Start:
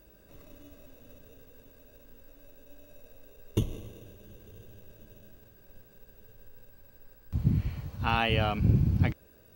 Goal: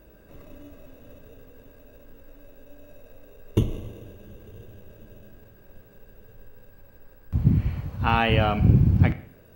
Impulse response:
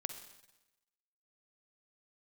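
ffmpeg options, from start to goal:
-filter_complex "[0:a]asplit=2[a][b];[1:a]atrim=start_sample=2205,asetrate=79380,aresample=44100,lowpass=3.1k[c];[b][c]afir=irnorm=-1:irlink=0,volume=7.5dB[d];[a][d]amix=inputs=2:normalize=0"

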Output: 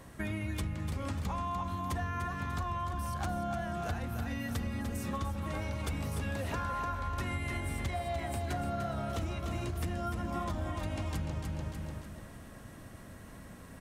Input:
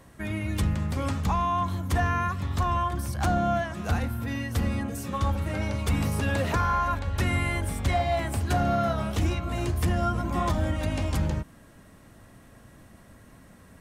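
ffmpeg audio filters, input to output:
-filter_complex "[0:a]asplit=2[a][b];[b]aecho=0:1:296|592|888|1184:0.501|0.175|0.0614|0.0215[c];[a][c]amix=inputs=2:normalize=0,acompressor=threshold=-34dB:ratio=6,volume=1dB"

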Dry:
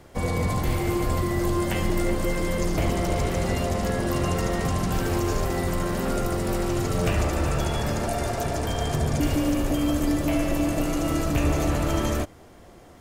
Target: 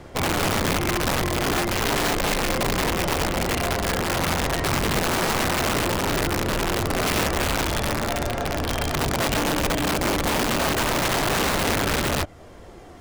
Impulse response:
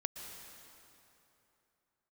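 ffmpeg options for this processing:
-filter_complex "[0:a]acrossover=split=4100[a][b];[b]acompressor=threshold=-51dB:ratio=4:attack=1:release=60[c];[a][c]amix=inputs=2:normalize=0,highshelf=f=9.6k:g=-8.5,asplit=2[d][e];[e]acompressor=threshold=-36dB:ratio=6,volume=-3dB[f];[d][f]amix=inputs=2:normalize=0,aphaser=in_gain=1:out_gain=1:delay=3.7:decay=0.26:speed=0.18:type=sinusoidal,aeval=exprs='(mod(7.5*val(0)+1,2)-1)/7.5':c=same"

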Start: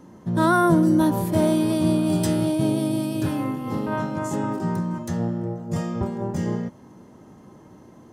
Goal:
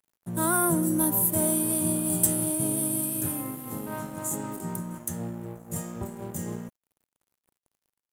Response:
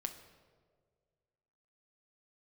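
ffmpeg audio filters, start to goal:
-filter_complex "[0:a]acrossover=split=160[a][b];[b]aexciter=amount=6.3:drive=10:freq=7.4k[c];[a][c]amix=inputs=2:normalize=0,aeval=exprs='sgn(val(0))*max(abs(val(0))-0.0126,0)':c=same,volume=-7.5dB"

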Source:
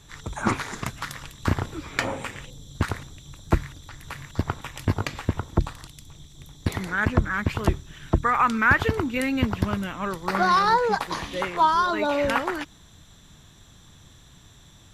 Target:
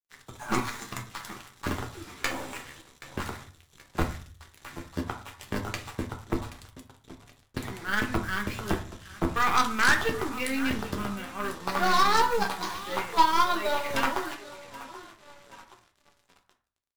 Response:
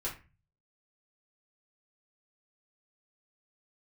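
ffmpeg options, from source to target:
-filter_complex "[0:a]highpass=f=160:p=1,atempo=0.88,aecho=1:1:777|1554|2331|3108:0.2|0.0918|0.0422|0.0194,flanger=delay=7:depth=7.1:regen=-29:speed=0.14:shape=triangular,acrusher=bits=6:mix=0:aa=0.5,aeval=exprs='0.316*(cos(1*acos(clip(val(0)/0.316,-1,1)))-cos(1*PI/2))+0.1*(cos(5*acos(clip(val(0)/0.316,-1,1)))-cos(5*PI/2))+0.0224*(cos(6*acos(clip(val(0)/0.316,-1,1)))-cos(6*PI/2))+0.0794*(cos(7*acos(clip(val(0)/0.316,-1,1)))-cos(7*PI/2))':c=same,asplit=2[a][b];[1:a]atrim=start_sample=2205,asetrate=32634,aresample=44100[c];[b][c]afir=irnorm=-1:irlink=0,volume=-4.5dB[d];[a][d]amix=inputs=2:normalize=0,adynamicequalizer=threshold=0.0224:dfrequency=2700:dqfactor=0.7:tfrequency=2700:tqfactor=0.7:attack=5:release=100:ratio=0.375:range=2.5:mode=boostabove:tftype=highshelf,volume=-6.5dB"

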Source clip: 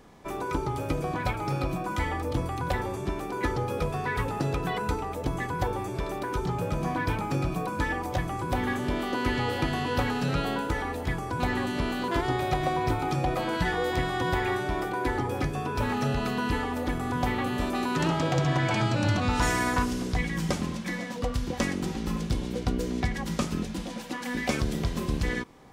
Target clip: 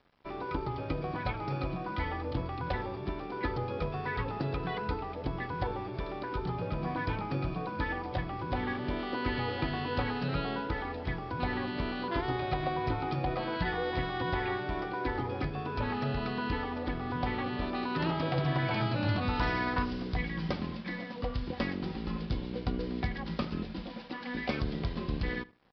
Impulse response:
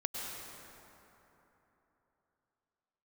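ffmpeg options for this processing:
-filter_complex "[0:a]aresample=11025,aeval=exprs='sgn(val(0))*max(abs(val(0))-0.00282,0)':c=same,aresample=44100,asplit=2[a][b];[b]adelay=75,lowpass=f=2.5k:p=1,volume=-20dB,asplit=2[c][d];[d]adelay=75,lowpass=f=2.5k:p=1,volume=0.25[e];[a][c][e]amix=inputs=3:normalize=0,volume=-4.5dB"

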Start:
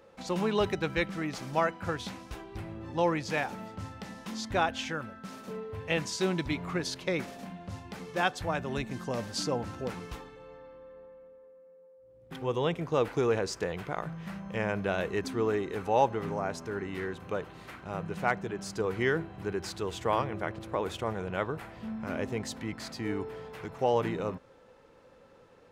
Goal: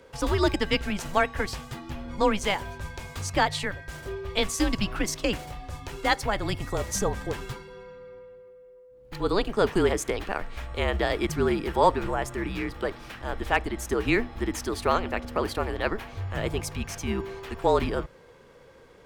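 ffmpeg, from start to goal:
-af "afreqshift=-150,asetrate=59535,aresample=44100,volume=5dB"

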